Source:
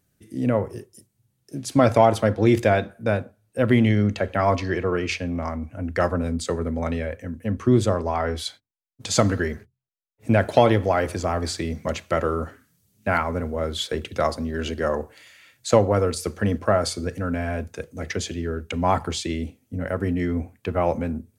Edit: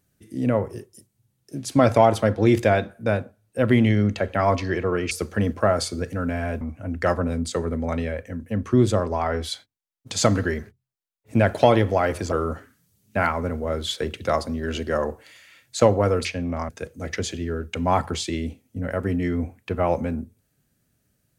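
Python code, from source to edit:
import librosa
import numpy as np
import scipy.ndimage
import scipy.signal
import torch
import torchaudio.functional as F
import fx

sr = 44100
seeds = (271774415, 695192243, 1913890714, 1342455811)

y = fx.edit(x, sr, fx.swap(start_s=5.11, length_s=0.44, other_s=16.16, other_length_s=1.5),
    fx.cut(start_s=11.26, length_s=0.97), tone=tone)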